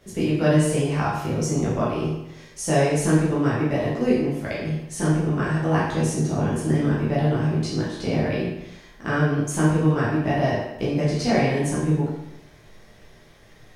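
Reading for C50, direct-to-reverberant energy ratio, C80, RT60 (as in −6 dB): 1.0 dB, −8.5 dB, 4.0 dB, 0.85 s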